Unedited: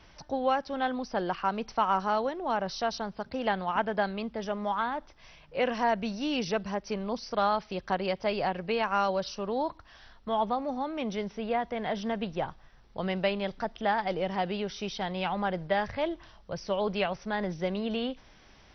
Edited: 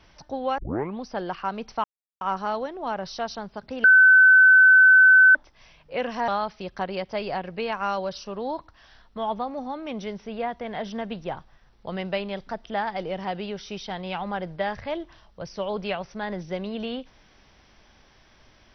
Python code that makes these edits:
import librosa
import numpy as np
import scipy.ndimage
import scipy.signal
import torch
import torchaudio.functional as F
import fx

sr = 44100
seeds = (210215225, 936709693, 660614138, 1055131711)

y = fx.edit(x, sr, fx.tape_start(start_s=0.58, length_s=0.43),
    fx.insert_silence(at_s=1.84, length_s=0.37),
    fx.bleep(start_s=3.47, length_s=1.51, hz=1520.0, db=-10.0),
    fx.cut(start_s=5.91, length_s=1.48), tone=tone)